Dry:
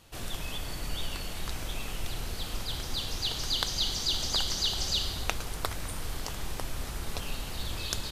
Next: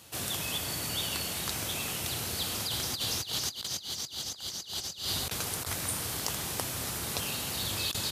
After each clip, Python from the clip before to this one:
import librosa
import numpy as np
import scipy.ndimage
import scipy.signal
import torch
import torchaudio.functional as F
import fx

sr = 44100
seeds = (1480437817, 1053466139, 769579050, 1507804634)

y = scipy.signal.sosfilt(scipy.signal.butter(4, 85.0, 'highpass', fs=sr, output='sos'), x)
y = fx.high_shelf(y, sr, hz=5200.0, db=9.5)
y = fx.over_compress(y, sr, threshold_db=-33.0, ratio=-0.5)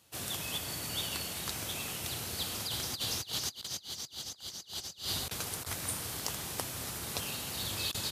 y = fx.upward_expand(x, sr, threshold_db=-50.0, expansion=1.5)
y = F.gain(torch.from_numpy(y), -2.0).numpy()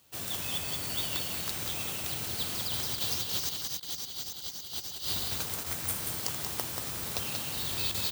y = x + 10.0 ** (-4.5 / 20.0) * np.pad(x, (int(183 * sr / 1000.0), 0))[:len(x)]
y = (np.kron(scipy.signal.resample_poly(y, 1, 2), np.eye(2)[0]) * 2)[:len(y)]